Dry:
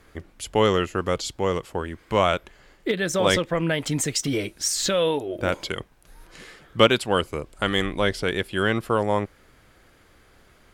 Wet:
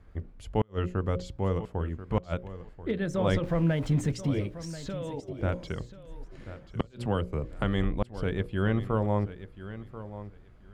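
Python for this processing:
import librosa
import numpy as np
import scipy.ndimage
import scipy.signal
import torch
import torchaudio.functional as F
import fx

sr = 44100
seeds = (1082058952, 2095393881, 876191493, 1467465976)

y = fx.zero_step(x, sr, step_db=-31.5, at=(3.43, 4.12))
y = fx.highpass(y, sr, hz=43.0, slope=6)
y = fx.hum_notches(y, sr, base_hz=60, count=10)
y = fx.level_steps(y, sr, step_db=15, at=(4.65, 5.39))
y = fx.tilt_eq(y, sr, slope=-4.0)
y = fx.gate_flip(y, sr, shuts_db=-3.0, range_db=-39)
y = fx.peak_eq(y, sr, hz=350.0, db=-3.5, octaves=0.9)
y = fx.echo_feedback(y, sr, ms=1036, feedback_pct=17, wet_db=-14)
y = fx.band_squash(y, sr, depth_pct=70, at=(6.8, 7.64))
y = y * librosa.db_to_amplitude(-8.5)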